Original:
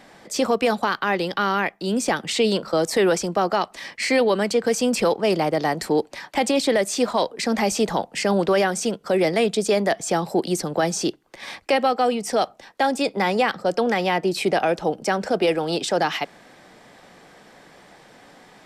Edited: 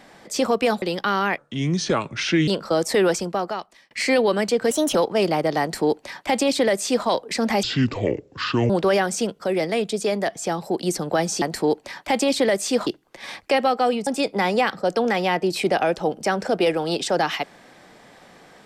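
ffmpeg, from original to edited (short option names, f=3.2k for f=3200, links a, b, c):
-filter_complex "[0:a]asplit=14[a][b][c][d][e][f][g][h][i][j][k][l][m][n];[a]atrim=end=0.822[o];[b]atrim=start=1.148:end=1.714[p];[c]atrim=start=1.71:end=2.5,asetpts=PTS-STARTPTS,asetrate=31752,aresample=44100[q];[d]atrim=start=2.496:end=3.93,asetpts=PTS-STARTPTS,afade=t=out:st=0.634:d=0.8[r];[e]atrim=start=3.93:end=4.734,asetpts=PTS-STARTPTS,afade=t=in:d=0.004:c=hsin[s];[f]atrim=start=4.73:end=5.03,asetpts=PTS-STARTPTS,asetrate=54684,aresample=44100,atrim=end_sample=10669,asetpts=PTS-STARTPTS[t];[g]atrim=start=5.026:end=7.714[u];[h]atrim=start=7.71:end=8.34,asetpts=PTS-STARTPTS,asetrate=26019,aresample=44100[v];[i]atrim=start=8.336:end=9.032[w];[j]atrim=start=9.028:end=10.472,asetpts=PTS-STARTPTS,volume=-3dB[x];[k]atrim=start=10.468:end=11.062[y];[l]atrim=start=5.688:end=7.142[z];[m]atrim=start=11.058:end=12.262[aa];[n]atrim=start=12.878[ab];[o][p]acrossfade=d=0.004:c1=hsin:c2=hsin[ac];[ac][q]acrossfade=d=0.004:c1=hsin:c2=hsin[ad];[r][s]concat=n=2:v=0:a=1[ae];[ad][ae]acrossfade=d=0.004:c1=hsin:c2=hsin[af];[af][t]acrossfade=d=0.004:c1=hsin:c2=hsin[ag];[ag][u]acrossfade=d=0.004:c1=hsin:c2=hsin[ah];[ah][v]acrossfade=d=0.004:c1=hsin:c2=hsin[ai];[ai][w]acrossfade=d=0.004:c1=hsin:c2=hsin[aj];[aj][x]acrossfade=d=0.004:c1=hsin:c2=hsin[ak];[ak][y]acrossfade=d=0.004:c1=hsin:c2=hsin[al];[al][z]acrossfade=d=0.004:c1=hsin:c2=hsin[am];[am][aa]acrossfade=d=0.004:c1=hsin:c2=hsin[an];[an][ab]acrossfade=d=0.004:c1=hsin:c2=hsin"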